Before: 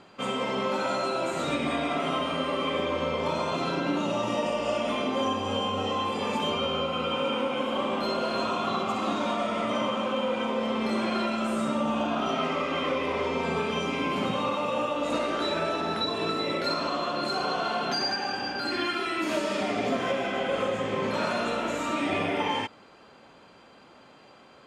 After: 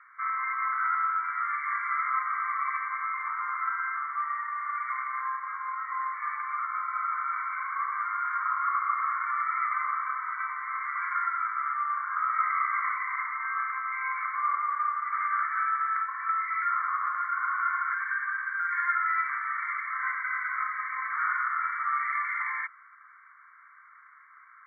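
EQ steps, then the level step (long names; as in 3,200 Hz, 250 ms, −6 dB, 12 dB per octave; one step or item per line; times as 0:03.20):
Butterworth high-pass 1,100 Hz 96 dB per octave
linear-phase brick-wall low-pass 2,300 Hz
high-frequency loss of the air 170 metres
+7.5 dB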